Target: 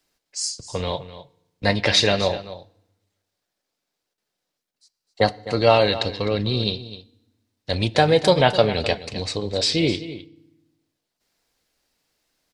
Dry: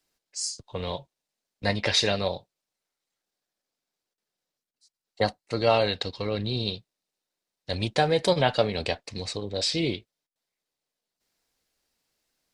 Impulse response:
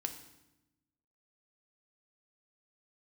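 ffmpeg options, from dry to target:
-filter_complex "[0:a]aecho=1:1:256:0.188,asplit=2[link_01][link_02];[1:a]atrim=start_sample=2205,lowpass=6800[link_03];[link_02][link_03]afir=irnorm=-1:irlink=0,volume=-10.5dB[link_04];[link_01][link_04]amix=inputs=2:normalize=0,volume=4dB"

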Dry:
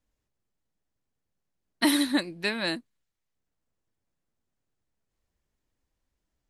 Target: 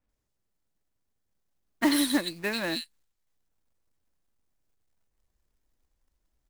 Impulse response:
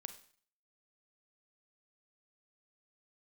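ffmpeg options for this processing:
-filter_complex "[0:a]asubboost=boost=2:cutoff=71,acrossover=split=2700[link_01][link_02];[link_02]adelay=90[link_03];[link_01][link_03]amix=inputs=2:normalize=0,acrusher=bits=3:mode=log:mix=0:aa=0.000001"

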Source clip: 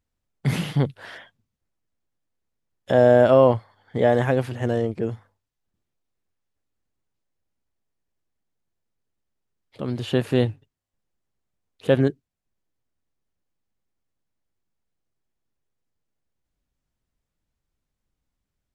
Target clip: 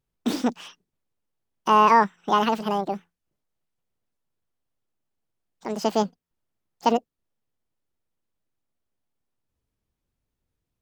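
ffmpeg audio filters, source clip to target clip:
ffmpeg -i in.wav -af "asetrate=76440,aresample=44100,volume=-1.5dB" out.wav

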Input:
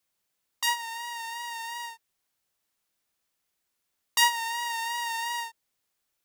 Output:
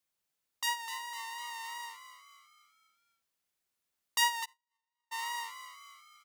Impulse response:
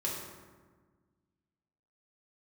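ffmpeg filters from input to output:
-filter_complex "[0:a]asplit=6[link_01][link_02][link_03][link_04][link_05][link_06];[link_02]adelay=252,afreqshift=88,volume=-11dB[link_07];[link_03]adelay=504,afreqshift=176,volume=-17dB[link_08];[link_04]adelay=756,afreqshift=264,volume=-23dB[link_09];[link_05]adelay=1008,afreqshift=352,volume=-29.1dB[link_10];[link_06]adelay=1260,afreqshift=440,volume=-35.1dB[link_11];[link_01][link_07][link_08][link_09][link_10][link_11]amix=inputs=6:normalize=0,asplit=3[link_12][link_13][link_14];[link_12]afade=type=out:start_time=4.44:duration=0.02[link_15];[link_13]agate=range=-57dB:threshold=-23dB:ratio=16:detection=peak,afade=type=in:start_time=4.44:duration=0.02,afade=type=out:start_time=5.11:duration=0.02[link_16];[link_14]afade=type=in:start_time=5.11:duration=0.02[link_17];[link_15][link_16][link_17]amix=inputs=3:normalize=0,volume=-6dB"

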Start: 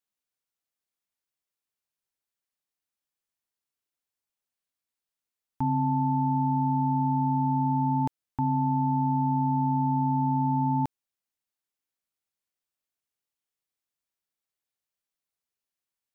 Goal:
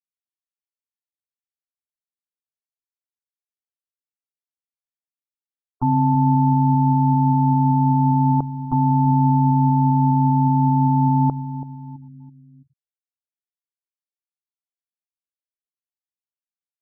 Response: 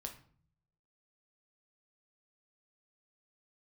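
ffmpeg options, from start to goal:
-filter_complex "[0:a]atempo=0.96,asplit=2[link_01][link_02];[link_02]adelay=332,lowpass=frequency=1100:poles=1,volume=-12dB,asplit=2[link_03][link_04];[link_04]adelay=332,lowpass=frequency=1100:poles=1,volume=0.49,asplit=2[link_05][link_06];[link_06]adelay=332,lowpass=frequency=1100:poles=1,volume=0.49,asplit=2[link_07][link_08];[link_08]adelay=332,lowpass=frequency=1100:poles=1,volume=0.49,asplit=2[link_09][link_10];[link_10]adelay=332,lowpass=frequency=1100:poles=1,volume=0.49[link_11];[link_01][link_03][link_05][link_07][link_09][link_11]amix=inputs=6:normalize=0,asplit=2[link_12][link_13];[1:a]atrim=start_sample=2205[link_14];[link_13][link_14]afir=irnorm=-1:irlink=0,volume=-15dB[link_15];[link_12][link_15]amix=inputs=2:normalize=0,afftfilt=real='re*gte(hypot(re,im),0.01)':imag='im*gte(hypot(re,im),0.01)':win_size=1024:overlap=0.75,volume=6.5dB"

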